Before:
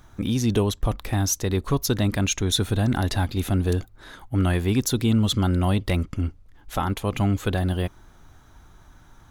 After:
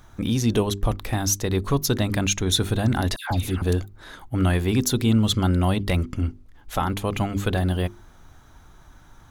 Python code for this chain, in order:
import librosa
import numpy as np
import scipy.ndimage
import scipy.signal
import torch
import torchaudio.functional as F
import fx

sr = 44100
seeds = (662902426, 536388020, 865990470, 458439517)

y = fx.hum_notches(x, sr, base_hz=50, count=8)
y = fx.dispersion(y, sr, late='lows', ms=145.0, hz=1400.0, at=(3.16, 3.62))
y = y * 10.0 ** (1.5 / 20.0)